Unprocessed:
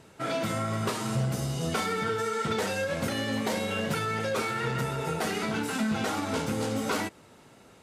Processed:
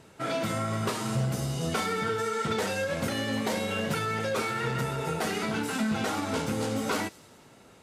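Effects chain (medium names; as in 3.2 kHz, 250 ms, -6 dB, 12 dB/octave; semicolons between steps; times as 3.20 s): feedback echo behind a high-pass 98 ms, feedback 64%, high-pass 4.1 kHz, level -16.5 dB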